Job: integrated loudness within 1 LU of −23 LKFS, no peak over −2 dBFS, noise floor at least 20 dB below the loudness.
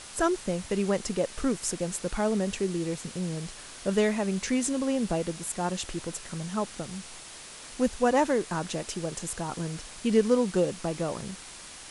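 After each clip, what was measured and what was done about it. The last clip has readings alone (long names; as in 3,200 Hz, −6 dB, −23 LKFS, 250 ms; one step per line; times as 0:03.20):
background noise floor −45 dBFS; target noise floor −49 dBFS; integrated loudness −29.0 LKFS; sample peak −11.0 dBFS; target loudness −23.0 LKFS
→ noise reduction from a noise print 6 dB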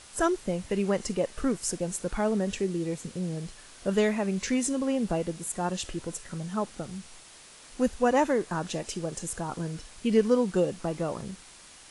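background noise floor −51 dBFS; integrated loudness −29.5 LKFS; sample peak −11.0 dBFS; target loudness −23.0 LKFS
→ level +6.5 dB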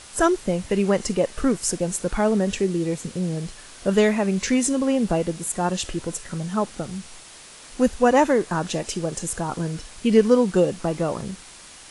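integrated loudness −23.0 LKFS; sample peak −4.5 dBFS; background noise floor −44 dBFS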